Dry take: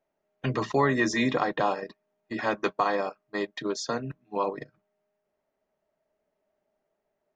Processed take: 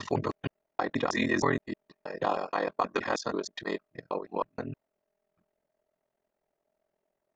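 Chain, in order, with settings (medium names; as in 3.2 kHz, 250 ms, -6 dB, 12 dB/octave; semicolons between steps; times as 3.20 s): slices played last to first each 158 ms, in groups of 5; ring modulator 21 Hz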